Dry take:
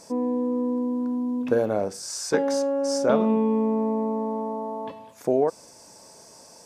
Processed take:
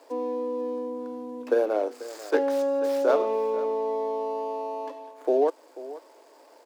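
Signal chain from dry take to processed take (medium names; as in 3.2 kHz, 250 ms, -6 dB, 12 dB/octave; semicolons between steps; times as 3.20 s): median filter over 15 samples; steep high-pass 280 Hz 72 dB/octave; on a send: delay 489 ms -16.5 dB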